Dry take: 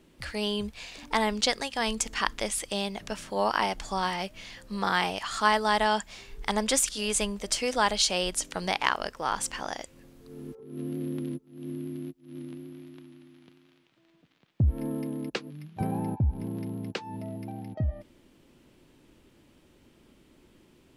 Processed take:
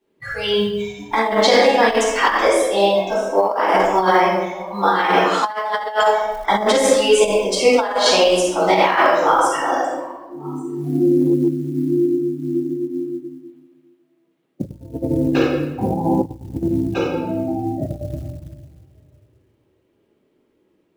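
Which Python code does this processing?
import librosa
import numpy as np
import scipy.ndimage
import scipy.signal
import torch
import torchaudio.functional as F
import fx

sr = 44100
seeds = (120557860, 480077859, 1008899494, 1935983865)

p1 = x + fx.echo_single(x, sr, ms=1149, db=-20.5, dry=0)
p2 = fx.noise_reduce_blind(p1, sr, reduce_db=23)
p3 = 10.0 ** (-14.5 / 20.0) * np.tanh(p2 / 10.0 ** (-14.5 / 20.0))
p4 = p2 + (p3 * 10.0 ** (-9.0 / 20.0))
p5 = fx.lowpass(p4, sr, hz=2100.0, slope=6)
p6 = fx.room_shoebox(p5, sr, seeds[0], volume_m3=520.0, walls='mixed', distance_m=9.0)
p7 = fx.over_compress(p6, sr, threshold_db=-12.0, ratio=-0.5)
p8 = fx.quant_companded(p7, sr, bits=8)
p9 = fx.highpass(p8, sr, hz=340.0, slope=6)
p10 = fx.peak_eq(p9, sr, hz=440.0, db=7.5, octaves=0.79)
y = p10 * 10.0 ** (-3.0 / 20.0)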